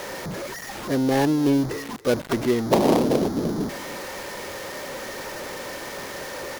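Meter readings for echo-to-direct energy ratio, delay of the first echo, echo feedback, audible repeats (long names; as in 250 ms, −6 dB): −21.0 dB, 284 ms, repeats not evenly spaced, 1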